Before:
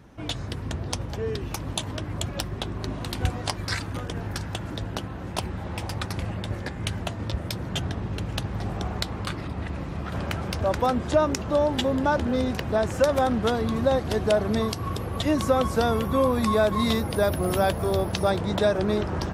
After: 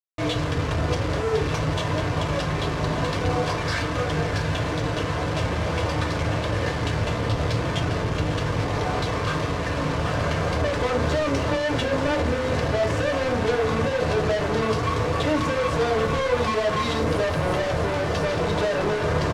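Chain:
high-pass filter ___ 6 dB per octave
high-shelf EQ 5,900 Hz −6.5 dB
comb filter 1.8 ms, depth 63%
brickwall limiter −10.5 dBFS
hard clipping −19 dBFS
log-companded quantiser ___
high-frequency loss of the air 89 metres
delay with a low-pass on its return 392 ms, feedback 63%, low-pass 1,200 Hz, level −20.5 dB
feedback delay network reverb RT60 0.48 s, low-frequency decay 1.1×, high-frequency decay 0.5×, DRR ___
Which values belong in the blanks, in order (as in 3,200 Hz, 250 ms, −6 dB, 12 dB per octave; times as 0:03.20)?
160 Hz, 2 bits, 0 dB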